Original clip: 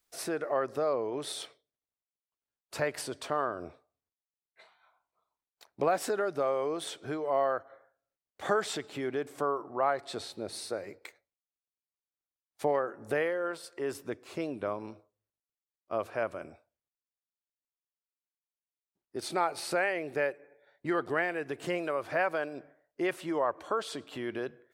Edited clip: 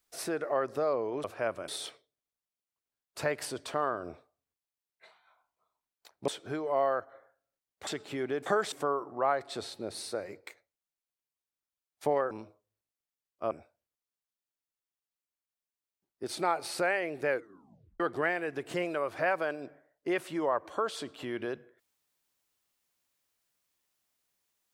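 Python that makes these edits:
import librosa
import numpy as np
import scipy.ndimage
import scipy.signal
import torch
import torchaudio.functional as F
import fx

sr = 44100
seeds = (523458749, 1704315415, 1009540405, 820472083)

y = fx.edit(x, sr, fx.cut(start_s=5.84, length_s=1.02),
    fx.move(start_s=8.45, length_s=0.26, to_s=9.3),
    fx.cut(start_s=12.89, length_s=1.91),
    fx.move(start_s=16.0, length_s=0.44, to_s=1.24),
    fx.tape_stop(start_s=20.22, length_s=0.71), tone=tone)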